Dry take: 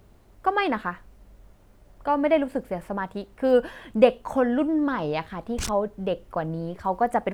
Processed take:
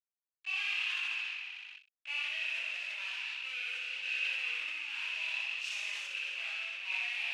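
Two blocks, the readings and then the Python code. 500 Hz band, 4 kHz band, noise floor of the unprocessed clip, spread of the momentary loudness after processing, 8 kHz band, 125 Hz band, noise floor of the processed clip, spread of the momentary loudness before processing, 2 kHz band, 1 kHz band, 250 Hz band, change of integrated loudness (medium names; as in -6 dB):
-40.0 dB, +4.5 dB, -54 dBFS, 6 LU, no reading, under -40 dB, under -85 dBFS, 11 LU, +1.5 dB, -26.0 dB, under -40 dB, -9.5 dB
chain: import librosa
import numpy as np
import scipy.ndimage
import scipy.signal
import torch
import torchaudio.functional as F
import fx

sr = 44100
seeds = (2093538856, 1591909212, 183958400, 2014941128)

y = fx.spec_trails(x, sr, decay_s=1.6)
y = fx.peak_eq(y, sr, hz=2200.0, db=-14.5, octaves=0.26)
y = fx.fuzz(y, sr, gain_db=36.0, gate_db=-36.0)
y = fx.chorus_voices(y, sr, voices=6, hz=0.3, base_ms=26, depth_ms=3.8, mix_pct=50)
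y = fx.ladder_bandpass(y, sr, hz=2700.0, resonance_pct=85)
y = fx.echo_feedback(y, sr, ms=62, feedback_pct=39, wet_db=-3.0)
y = fx.sustainer(y, sr, db_per_s=25.0)
y = y * 10.0 ** (-8.0 / 20.0)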